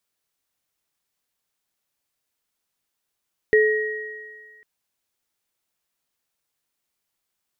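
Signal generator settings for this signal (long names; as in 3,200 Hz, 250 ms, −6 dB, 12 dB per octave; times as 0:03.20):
inharmonic partials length 1.10 s, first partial 430 Hz, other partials 1,890 Hz, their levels −5 dB, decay 1.35 s, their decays 2.04 s, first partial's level −12 dB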